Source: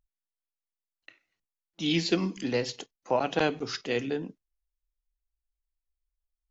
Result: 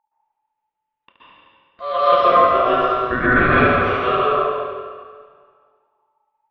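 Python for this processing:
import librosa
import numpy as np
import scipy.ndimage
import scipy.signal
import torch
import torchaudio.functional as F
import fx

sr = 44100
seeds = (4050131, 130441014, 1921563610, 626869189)

y = scipy.signal.sosfilt(scipy.signal.butter(4, 2000.0, 'lowpass', fs=sr, output='sos'), x)
y = y * np.sin(2.0 * np.pi * 870.0 * np.arange(len(y)) / sr)
y = fx.echo_feedback(y, sr, ms=72, feedback_pct=53, wet_db=-6.5)
y = fx.rev_plate(y, sr, seeds[0], rt60_s=1.8, hf_ratio=0.9, predelay_ms=110, drr_db=-10.0)
y = y * librosa.db_to_amplitude(5.5)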